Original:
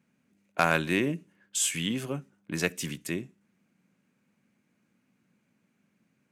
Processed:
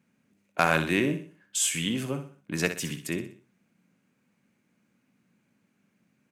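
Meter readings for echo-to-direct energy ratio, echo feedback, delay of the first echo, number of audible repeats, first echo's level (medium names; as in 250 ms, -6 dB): -9.0 dB, 38%, 62 ms, 4, -9.5 dB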